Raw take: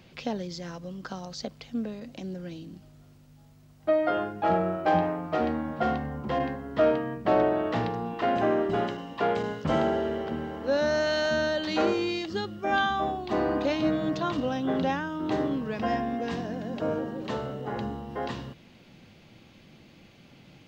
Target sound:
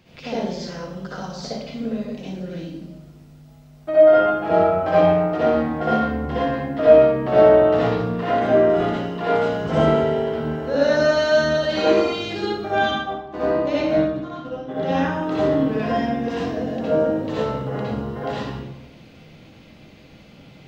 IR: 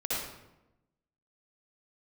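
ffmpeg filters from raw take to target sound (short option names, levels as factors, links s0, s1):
-filter_complex "[0:a]asplit=3[s0][s1][s2];[s0]afade=t=out:st=12.67:d=0.02[s3];[s1]agate=range=0.0562:threshold=0.0562:ratio=16:detection=peak,afade=t=in:st=12.67:d=0.02,afade=t=out:st=14.8:d=0.02[s4];[s2]afade=t=in:st=14.8:d=0.02[s5];[s3][s4][s5]amix=inputs=3:normalize=0[s6];[1:a]atrim=start_sample=2205[s7];[s6][s7]afir=irnorm=-1:irlink=0"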